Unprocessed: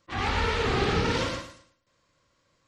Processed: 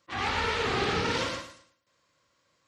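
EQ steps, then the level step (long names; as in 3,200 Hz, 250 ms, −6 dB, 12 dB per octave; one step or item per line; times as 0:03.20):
high-pass filter 51 Hz
low-shelf EQ 76 Hz −5 dB
low-shelf EQ 470 Hz −5 dB
0.0 dB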